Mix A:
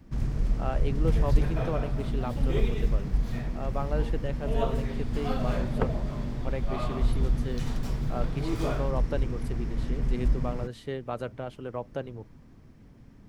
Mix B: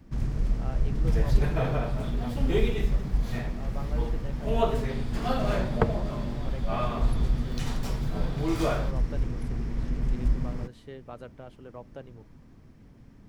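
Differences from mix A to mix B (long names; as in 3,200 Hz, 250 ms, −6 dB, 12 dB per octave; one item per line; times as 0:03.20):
speech −9.0 dB
second sound +5.0 dB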